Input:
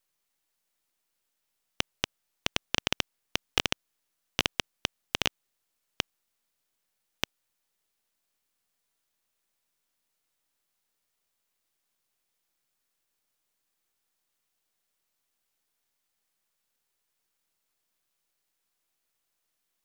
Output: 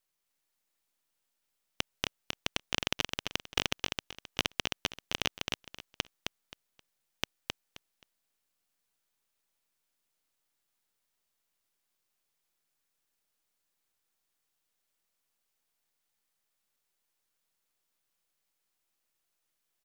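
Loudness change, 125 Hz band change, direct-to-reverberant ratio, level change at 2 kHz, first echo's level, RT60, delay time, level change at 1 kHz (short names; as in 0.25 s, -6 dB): -3.0 dB, -2.0 dB, none, -2.0 dB, -4.0 dB, none, 0.264 s, -2.0 dB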